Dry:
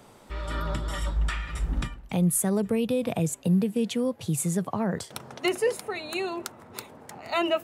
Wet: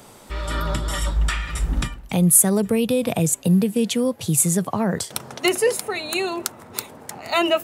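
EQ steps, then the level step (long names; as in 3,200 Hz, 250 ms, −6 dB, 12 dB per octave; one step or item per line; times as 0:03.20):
high-shelf EQ 4,600 Hz +8.5 dB
+5.5 dB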